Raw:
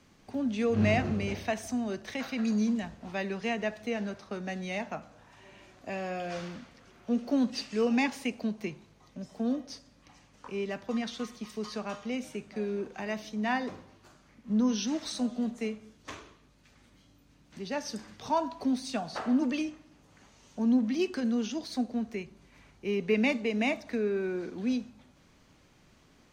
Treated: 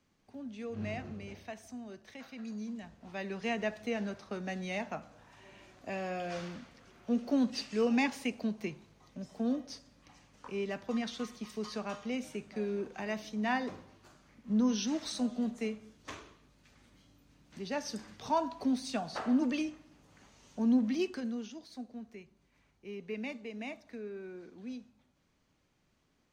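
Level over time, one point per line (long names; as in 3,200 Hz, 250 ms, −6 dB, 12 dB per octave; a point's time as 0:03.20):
0:02.64 −13 dB
0:03.53 −2 dB
0:20.93 −2 dB
0:21.61 −13 dB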